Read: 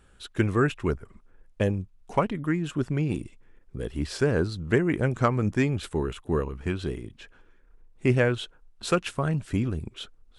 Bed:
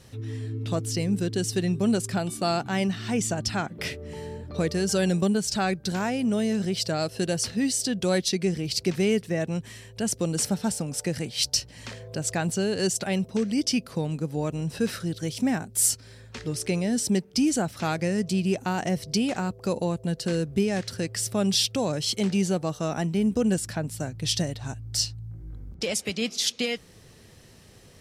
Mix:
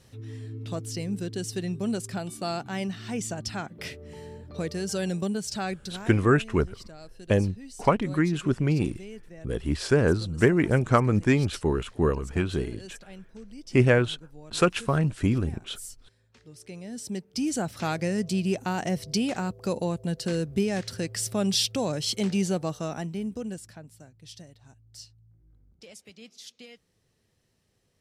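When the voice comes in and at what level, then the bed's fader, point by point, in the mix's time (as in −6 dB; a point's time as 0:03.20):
5.70 s, +2.5 dB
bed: 0:05.76 −5.5 dB
0:06.30 −19.5 dB
0:16.44 −19.5 dB
0:17.71 −1.5 dB
0:22.67 −1.5 dB
0:24.15 −20 dB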